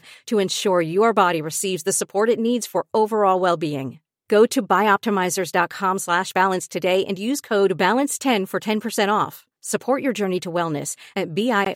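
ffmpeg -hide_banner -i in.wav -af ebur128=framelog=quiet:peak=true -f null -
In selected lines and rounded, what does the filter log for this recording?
Integrated loudness:
  I:         -20.7 LUFS
  Threshold: -30.8 LUFS
Loudness range:
  LRA:         2.6 LU
  Threshold: -40.6 LUFS
  LRA low:   -22.3 LUFS
  LRA high:  -19.8 LUFS
True peak:
  Peak:       -3.2 dBFS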